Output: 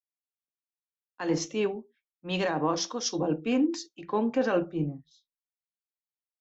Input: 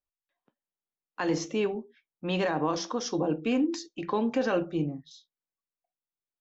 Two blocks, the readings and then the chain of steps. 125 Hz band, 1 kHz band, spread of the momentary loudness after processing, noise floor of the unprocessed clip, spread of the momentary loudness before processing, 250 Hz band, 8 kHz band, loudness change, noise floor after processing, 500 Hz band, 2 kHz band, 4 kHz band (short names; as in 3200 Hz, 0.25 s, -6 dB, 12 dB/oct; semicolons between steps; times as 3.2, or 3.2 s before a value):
0.0 dB, 0.0 dB, 9 LU, under -85 dBFS, 9 LU, 0.0 dB, n/a, +0.5 dB, under -85 dBFS, 0.0 dB, -0.5 dB, +2.5 dB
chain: three-band expander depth 100%